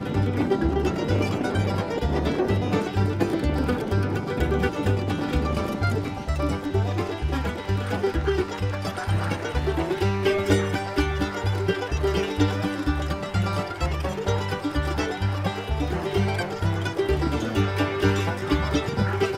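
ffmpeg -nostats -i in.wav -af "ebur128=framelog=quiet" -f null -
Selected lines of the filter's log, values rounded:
Integrated loudness:
  I:         -25.2 LUFS
  Threshold: -35.2 LUFS
Loudness range:
  LRA:         2.0 LU
  Threshold: -45.4 LUFS
  LRA low:   -26.4 LUFS
  LRA high:  -24.4 LUFS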